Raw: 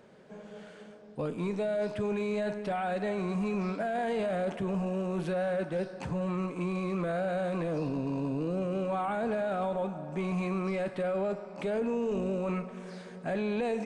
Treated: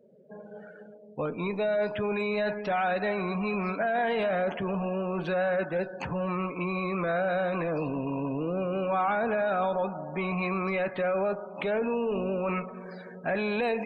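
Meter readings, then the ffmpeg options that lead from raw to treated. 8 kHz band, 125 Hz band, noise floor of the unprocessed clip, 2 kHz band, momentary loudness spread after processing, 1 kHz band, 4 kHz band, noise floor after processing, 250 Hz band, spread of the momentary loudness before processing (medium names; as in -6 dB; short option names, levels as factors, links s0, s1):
no reading, -0.5 dB, -49 dBFS, +8.0 dB, 7 LU, +5.5 dB, +5.0 dB, -48 dBFS, 0.0 dB, 6 LU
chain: -af "afftdn=nr=35:nf=-49,tiltshelf=f=690:g=-5.5,volume=1.68"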